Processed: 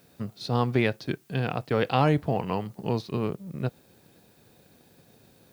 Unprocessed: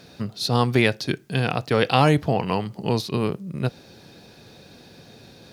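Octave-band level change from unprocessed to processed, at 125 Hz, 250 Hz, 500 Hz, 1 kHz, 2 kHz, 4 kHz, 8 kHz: -4.5 dB, -4.5 dB, -4.5 dB, -5.0 dB, -7.0 dB, -10.0 dB, under -10 dB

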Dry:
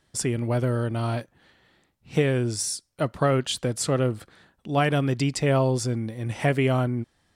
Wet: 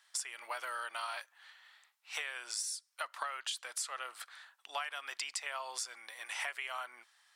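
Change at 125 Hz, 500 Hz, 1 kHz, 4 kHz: under -40 dB, -26.0 dB, -10.5 dB, -7.0 dB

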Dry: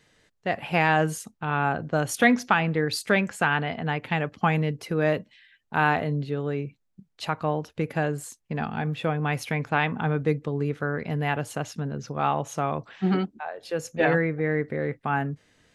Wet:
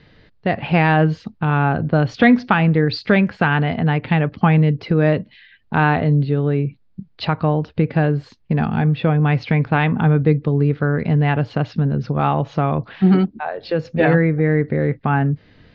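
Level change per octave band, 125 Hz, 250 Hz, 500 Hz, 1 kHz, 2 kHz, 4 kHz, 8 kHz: +12.5 dB, +10.5 dB, +6.5 dB, +5.0 dB, +4.0 dB, +4.0 dB, under -15 dB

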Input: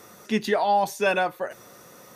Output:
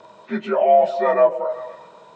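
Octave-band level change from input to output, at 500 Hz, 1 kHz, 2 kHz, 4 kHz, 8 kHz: +9.0 dB, +3.0 dB, -5.0 dB, n/a, under -15 dB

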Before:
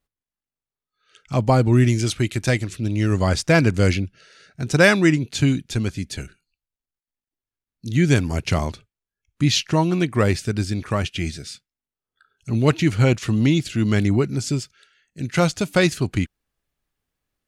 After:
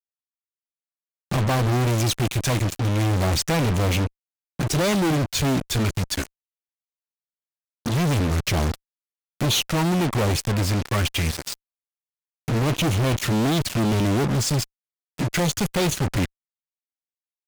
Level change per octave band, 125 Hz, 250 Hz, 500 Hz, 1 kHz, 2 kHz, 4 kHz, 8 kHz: -2.0, -3.5, -4.0, 0.0, -5.0, +1.5, +3.0 dB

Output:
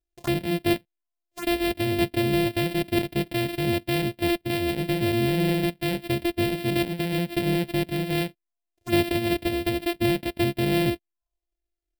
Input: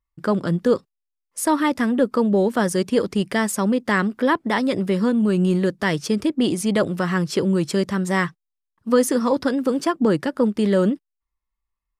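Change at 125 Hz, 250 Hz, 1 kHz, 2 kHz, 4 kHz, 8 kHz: -1.5, -5.5, -7.0, -4.0, +2.0, -8.0 dB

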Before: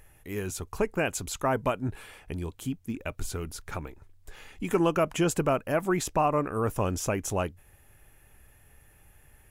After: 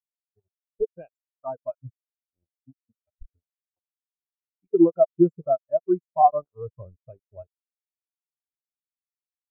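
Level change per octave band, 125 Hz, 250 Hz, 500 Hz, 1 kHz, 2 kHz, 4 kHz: -8.0 dB, +4.0 dB, +3.5 dB, +5.5 dB, under -30 dB, under -40 dB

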